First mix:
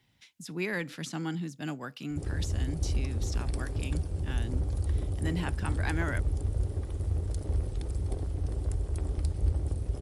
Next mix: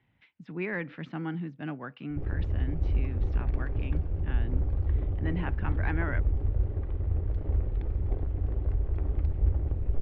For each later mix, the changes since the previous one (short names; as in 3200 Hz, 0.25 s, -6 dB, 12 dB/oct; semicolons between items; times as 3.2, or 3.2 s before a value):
background: remove HPF 53 Hz; master: add LPF 2500 Hz 24 dB/oct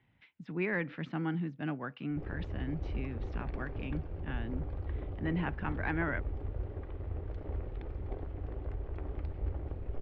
background: add low shelf 230 Hz -11.5 dB